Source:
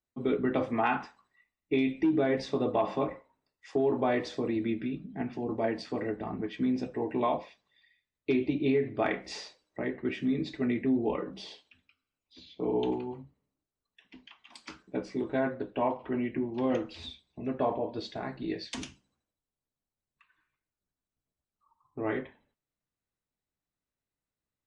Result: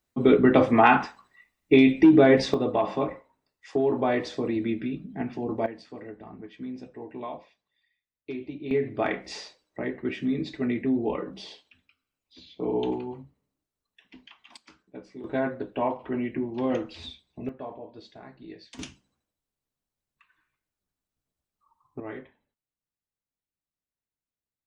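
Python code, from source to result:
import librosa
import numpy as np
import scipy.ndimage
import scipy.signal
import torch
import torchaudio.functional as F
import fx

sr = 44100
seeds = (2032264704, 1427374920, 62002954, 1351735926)

y = fx.gain(x, sr, db=fx.steps((0.0, 10.5), (2.54, 3.0), (5.66, -8.0), (8.71, 2.0), (14.57, -9.0), (15.24, 2.0), (17.49, -9.5), (18.79, 2.5), (22.0, -6.5)))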